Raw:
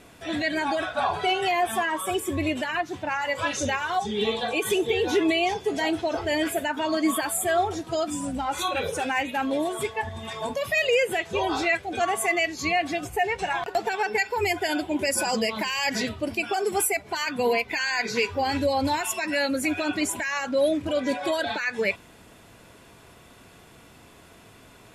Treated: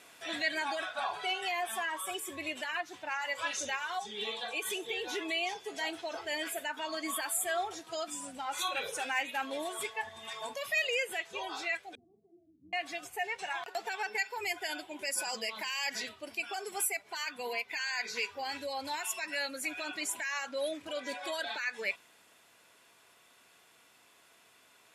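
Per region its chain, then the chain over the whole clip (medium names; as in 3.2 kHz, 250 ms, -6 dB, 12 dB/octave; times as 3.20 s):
11.95–12.73 s: inverse Chebyshev low-pass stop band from 1.5 kHz, stop band 80 dB + doubling 48 ms -8.5 dB
whole clip: high-pass 1.3 kHz 6 dB/octave; gain riding 2 s; trim -6 dB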